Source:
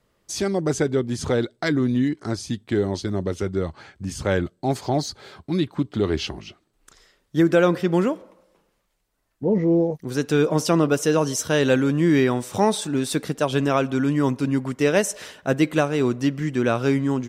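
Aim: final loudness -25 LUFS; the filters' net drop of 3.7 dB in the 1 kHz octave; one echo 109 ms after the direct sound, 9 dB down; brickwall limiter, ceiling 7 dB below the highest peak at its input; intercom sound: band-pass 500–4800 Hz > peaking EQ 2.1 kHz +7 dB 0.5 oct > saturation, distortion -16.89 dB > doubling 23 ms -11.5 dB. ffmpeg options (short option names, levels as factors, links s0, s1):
-filter_complex "[0:a]equalizer=f=1000:t=o:g=-5,alimiter=limit=0.188:level=0:latency=1,highpass=500,lowpass=4800,equalizer=f=2100:t=o:w=0.5:g=7,aecho=1:1:109:0.355,asoftclip=threshold=0.0944,asplit=2[s0][s1];[s1]adelay=23,volume=0.266[s2];[s0][s2]amix=inputs=2:normalize=0,volume=2.11"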